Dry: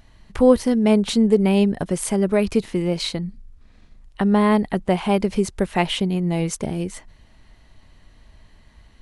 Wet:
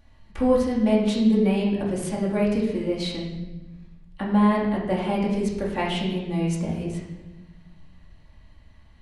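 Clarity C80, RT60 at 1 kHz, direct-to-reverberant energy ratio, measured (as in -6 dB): 5.5 dB, 0.95 s, -5.0 dB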